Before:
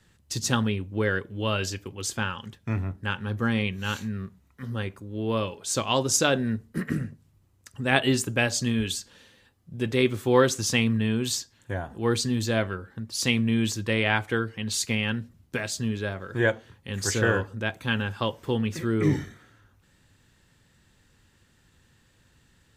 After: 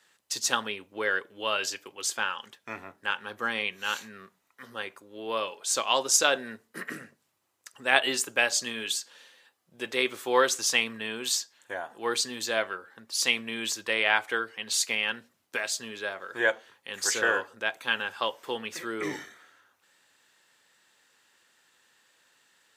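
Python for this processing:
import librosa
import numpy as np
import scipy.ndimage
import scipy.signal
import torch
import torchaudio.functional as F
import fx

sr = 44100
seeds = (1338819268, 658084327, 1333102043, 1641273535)

y = scipy.signal.sosfilt(scipy.signal.butter(2, 610.0, 'highpass', fs=sr, output='sos'), x)
y = y * 10.0 ** (1.5 / 20.0)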